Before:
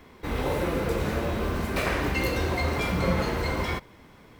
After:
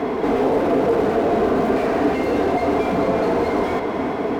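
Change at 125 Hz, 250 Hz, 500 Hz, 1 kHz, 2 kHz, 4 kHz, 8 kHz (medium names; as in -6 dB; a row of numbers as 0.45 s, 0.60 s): -2.5 dB, +10.0 dB, +12.0 dB, +10.0 dB, +1.0 dB, -1.5 dB, no reading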